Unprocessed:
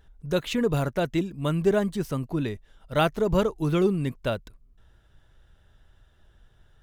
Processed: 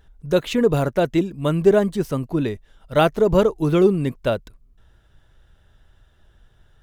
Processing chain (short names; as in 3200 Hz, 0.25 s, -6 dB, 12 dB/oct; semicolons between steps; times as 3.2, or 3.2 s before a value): dynamic EQ 460 Hz, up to +5 dB, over -33 dBFS, Q 0.73; gain +3 dB